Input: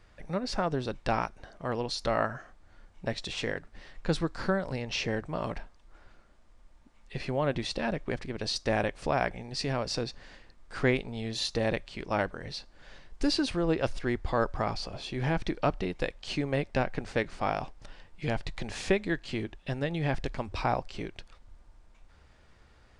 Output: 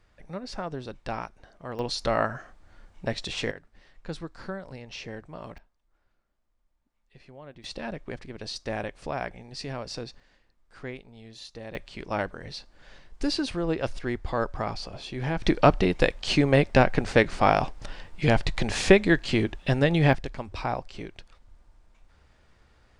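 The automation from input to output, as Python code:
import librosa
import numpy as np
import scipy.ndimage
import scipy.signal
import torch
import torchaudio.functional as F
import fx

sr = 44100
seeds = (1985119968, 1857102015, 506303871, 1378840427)

y = fx.gain(x, sr, db=fx.steps((0.0, -4.5), (1.79, 3.0), (3.51, -7.5), (5.58, -17.0), (7.64, -4.0), (10.2, -12.0), (11.75, 0.0), (15.43, 9.5), (20.13, -1.0)))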